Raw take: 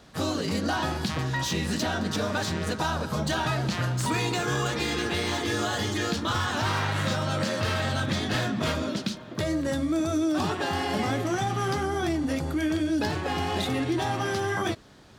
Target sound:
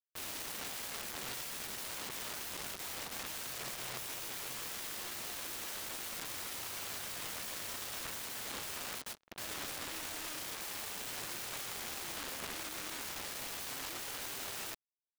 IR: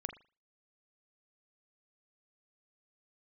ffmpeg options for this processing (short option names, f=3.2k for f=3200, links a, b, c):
-af "acrusher=bits=4:mix=0:aa=0.5,aeval=exprs='(mod(28.2*val(0)+1,2)-1)/28.2':c=same,bass=f=250:g=-3,treble=f=4k:g=-2,volume=-3dB"